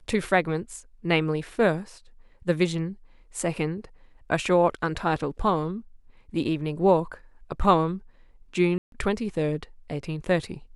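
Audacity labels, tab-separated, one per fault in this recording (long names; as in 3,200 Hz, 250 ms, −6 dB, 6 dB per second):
8.780000	8.920000	drop-out 142 ms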